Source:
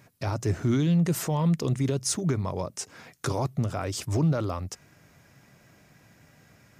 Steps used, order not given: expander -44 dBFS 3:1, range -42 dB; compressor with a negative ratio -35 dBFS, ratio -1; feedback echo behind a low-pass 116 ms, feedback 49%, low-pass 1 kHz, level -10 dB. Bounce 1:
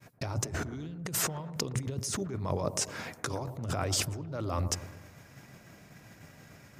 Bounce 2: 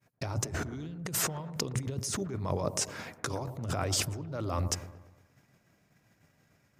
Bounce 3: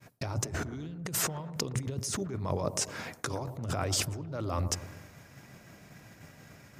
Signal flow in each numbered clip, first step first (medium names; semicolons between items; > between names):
compressor with a negative ratio > expander > feedback echo behind a low-pass; expander > compressor with a negative ratio > feedback echo behind a low-pass; compressor with a negative ratio > feedback echo behind a low-pass > expander